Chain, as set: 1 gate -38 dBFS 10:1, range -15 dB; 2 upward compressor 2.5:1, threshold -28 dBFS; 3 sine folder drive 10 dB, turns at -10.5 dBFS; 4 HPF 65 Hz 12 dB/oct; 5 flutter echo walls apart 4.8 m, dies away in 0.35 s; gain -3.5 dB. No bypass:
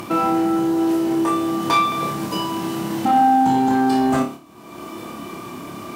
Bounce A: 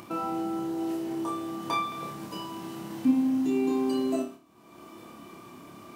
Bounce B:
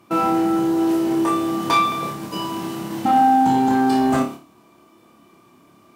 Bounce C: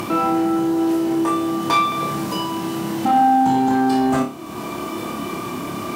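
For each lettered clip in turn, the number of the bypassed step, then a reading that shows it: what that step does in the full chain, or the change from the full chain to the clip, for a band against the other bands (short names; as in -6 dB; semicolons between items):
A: 3, distortion -3 dB; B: 2, momentary loudness spread change -5 LU; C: 1, momentary loudness spread change -6 LU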